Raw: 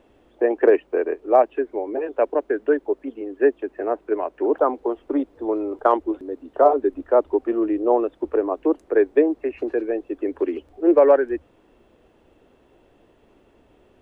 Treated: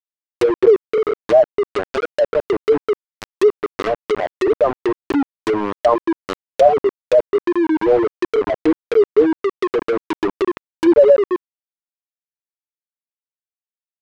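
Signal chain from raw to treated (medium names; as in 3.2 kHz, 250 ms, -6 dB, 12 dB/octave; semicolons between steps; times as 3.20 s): spectral contrast enhancement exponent 3.3; bit crusher 4-bit; low-pass that closes with the level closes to 1.2 kHz, closed at -18 dBFS; trim +4.5 dB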